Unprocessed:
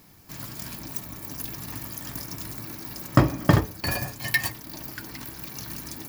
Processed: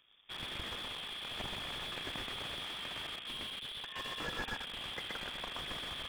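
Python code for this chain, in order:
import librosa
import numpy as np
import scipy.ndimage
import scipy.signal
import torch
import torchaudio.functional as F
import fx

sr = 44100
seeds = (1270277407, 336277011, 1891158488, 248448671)

p1 = fx.over_compress(x, sr, threshold_db=-32.0, ratio=-0.5)
p2 = fx.power_curve(p1, sr, exponent=2.0)
p3 = fx.freq_invert(p2, sr, carrier_hz=3500)
p4 = p3 + fx.echo_single(p3, sr, ms=125, db=-4.0, dry=0)
p5 = fx.slew_limit(p4, sr, full_power_hz=4.9)
y = p5 * librosa.db_to_amplitude(14.5)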